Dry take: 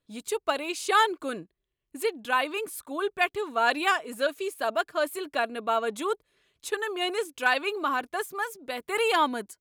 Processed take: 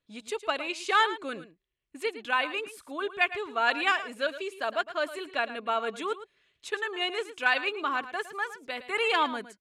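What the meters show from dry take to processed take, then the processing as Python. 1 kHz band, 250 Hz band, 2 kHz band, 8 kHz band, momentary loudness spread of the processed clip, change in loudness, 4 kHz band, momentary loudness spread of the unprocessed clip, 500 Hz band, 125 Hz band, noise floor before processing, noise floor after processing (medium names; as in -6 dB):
-2.5 dB, -4.0 dB, +0.5 dB, -7.5 dB, 11 LU, -1.5 dB, 0.0 dB, 10 LU, -4.0 dB, no reading, -83 dBFS, -78 dBFS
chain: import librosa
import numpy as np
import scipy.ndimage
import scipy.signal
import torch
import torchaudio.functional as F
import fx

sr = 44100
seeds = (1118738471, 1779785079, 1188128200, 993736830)

p1 = scipy.signal.sosfilt(scipy.signal.butter(2, 7400.0, 'lowpass', fs=sr, output='sos'), x)
p2 = fx.peak_eq(p1, sr, hz=2300.0, db=6.0, octaves=1.6)
p3 = p2 + fx.echo_single(p2, sr, ms=110, db=-13.5, dry=0)
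y = F.gain(torch.from_numpy(p3), -4.5).numpy()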